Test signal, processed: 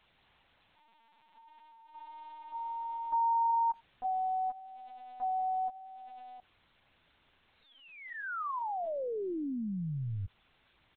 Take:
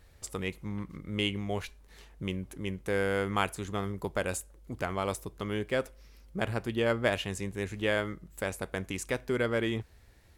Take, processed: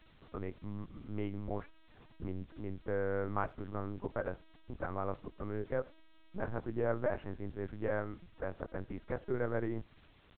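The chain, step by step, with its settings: low-pass 1.5 kHz 24 dB/octave; in parallel at -5.5 dB: word length cut 8-bit, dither triangular; on the sum: LPC vocoder at 8 kHz pitch kept; speakerphone echo 90 ms, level -29 dB; trim -8.5 dB

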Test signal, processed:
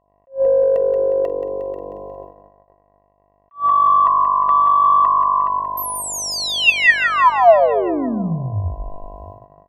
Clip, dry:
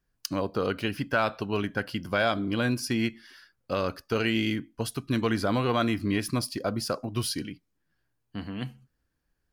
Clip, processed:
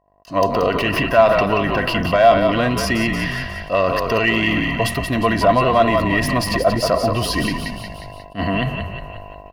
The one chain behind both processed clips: in parallel at -2 dB: compressor with a negative ratio -39 dBFS, ratio -1; on the sum: peaking EQ 9.2 kHz -5 dB 1.3 oct; on a send: frequency-shifting echo 179 ms, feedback 57%, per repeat -48 Hz, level -7.5 dB; on the sum: saturation -14.5 dBFS; mains buzz 50 Hz, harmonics 21, -52 dBFS -2 dB/octave; peak limiter -21 dBFS; bass shelf 120 Hz +3 dB; band-stop 930 Hz, Q 9.2; gate -46 dBFS, range -27 dB; small resonant body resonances 680/990/1900/2700 Hz, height 18 dB, ringing for 40 ms; attacks held to a fixed rise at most 290 dB/s; trim +7 dB

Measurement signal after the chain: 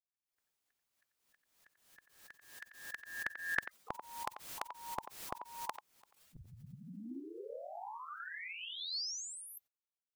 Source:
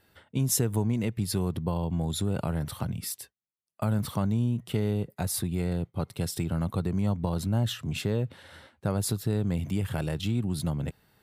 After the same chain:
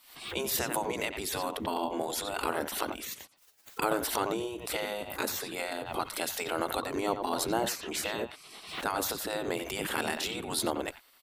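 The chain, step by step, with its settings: speakerphone echo 90 ms, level -10 dB; spectral gate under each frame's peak -15 dB weak; swell ahead of each attack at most 84 dB/s; trim +8.5 dB

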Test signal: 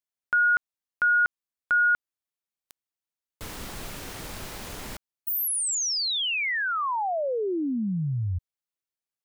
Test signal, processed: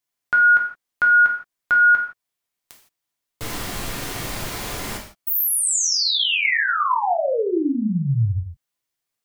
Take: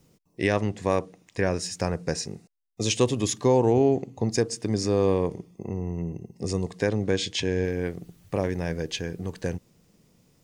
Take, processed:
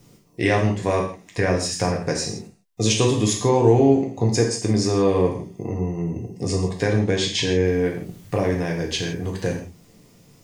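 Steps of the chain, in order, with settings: in parallel at +1.5 dB: compression, threshold -35 dBFS; on the sum: gated-style reverb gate 190 ms falling, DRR -1 dB

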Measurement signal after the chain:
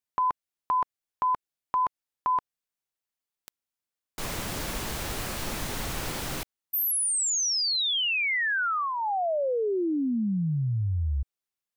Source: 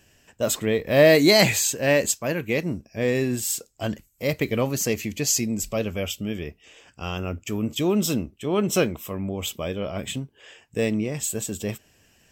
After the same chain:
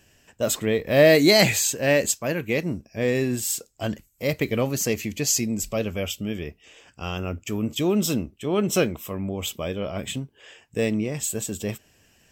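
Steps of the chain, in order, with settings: dynamic bell 1 kHz, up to -4 dB, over -38 dBFS, Q 4.6

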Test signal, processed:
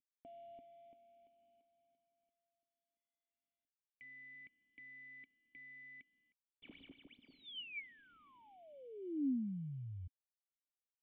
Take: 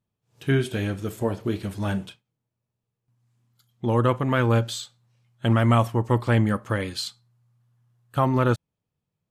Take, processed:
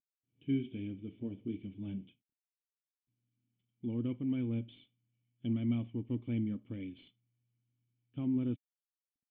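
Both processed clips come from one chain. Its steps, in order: CVSD coder 64 kbps; cascade formant filter i; trim -5 dB

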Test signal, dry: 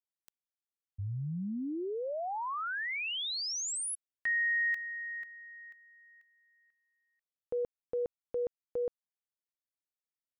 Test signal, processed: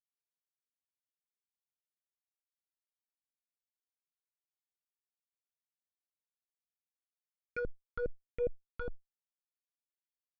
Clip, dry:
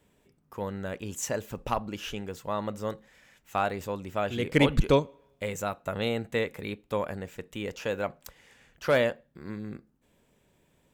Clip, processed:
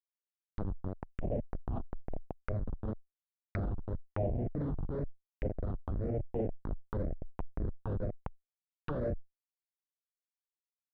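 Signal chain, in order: doubling 41 ms -4.5 dB; Schmitt trigger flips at -26.5 dBFS; dynamic bell 940 Hz, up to -7 dB, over -52 dBFS, Q 1.6; one-sided clip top -34 dBFS, bottom -29 dBFS; bass shelf 120 Hz +6.5 dB; phase shifter stages 6, 0.99 Hz, lowest notch 570–1300 Hz; transient shaper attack -7 dB, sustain +4 dB; compression 10:1, threshold -42 dBFS; touch-sensitive low-pass 660–2700 Hz down, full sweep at -43 dBFS; trim +9.5 dB

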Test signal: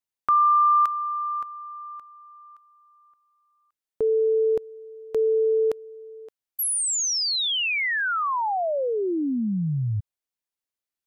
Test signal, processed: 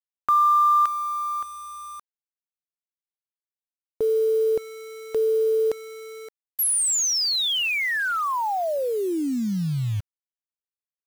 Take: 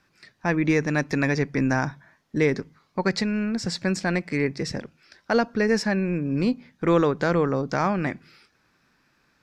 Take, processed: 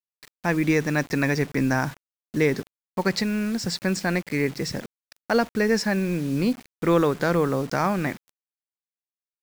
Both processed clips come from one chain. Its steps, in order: treble shelf 5.3 kHz +3.5 dB; bit crusher 7-bit

